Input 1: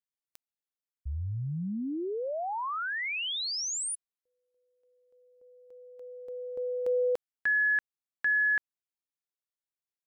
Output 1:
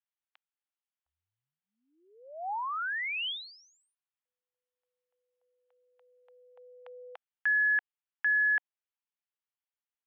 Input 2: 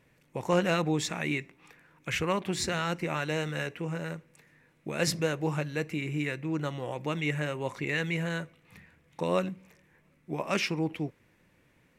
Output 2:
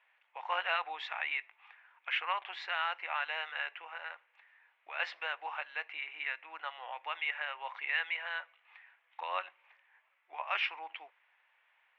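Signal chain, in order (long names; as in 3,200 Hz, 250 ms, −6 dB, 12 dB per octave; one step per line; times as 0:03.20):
elliptic band-pass filter 780–3,200 Hz, stop band 60 dB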